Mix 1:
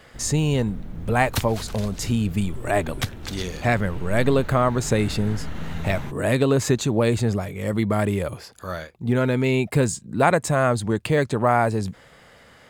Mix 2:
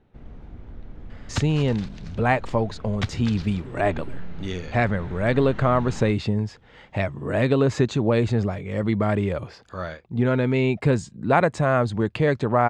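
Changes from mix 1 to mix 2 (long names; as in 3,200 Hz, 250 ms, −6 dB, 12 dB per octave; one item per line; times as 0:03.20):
speech: entry +1.10 s
first sound −3.5 dB
master: add high-frequency loss of the air 140 metres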